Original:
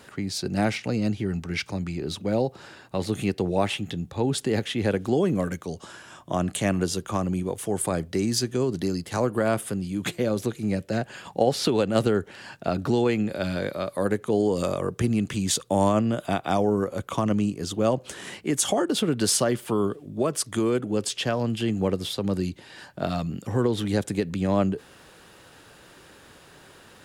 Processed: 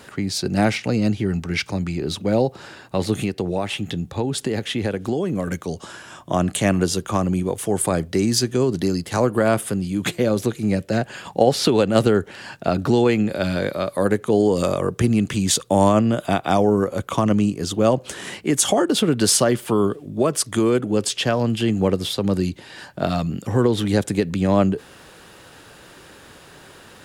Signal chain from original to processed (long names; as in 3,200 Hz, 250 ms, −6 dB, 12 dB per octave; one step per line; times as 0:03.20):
0:03.23–0:05.48: downward compressor 5 to 1, threshold −25 dBFS, peak gain reduction 8 dB
level +5.5 dB